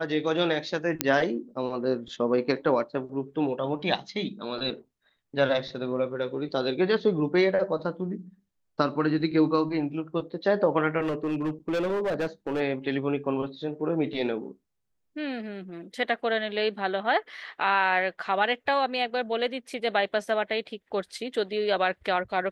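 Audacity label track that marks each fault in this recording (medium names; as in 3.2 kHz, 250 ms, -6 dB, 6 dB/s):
1.010000	1.010000	pop -4 dBFS
11.010000	12.610000	clipped -24 dBFS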